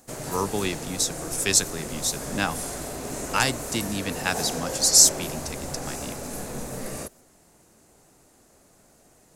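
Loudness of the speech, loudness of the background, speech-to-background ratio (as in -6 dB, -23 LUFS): -23.0 LUFS, -33.0 LUFS, 10.0 dB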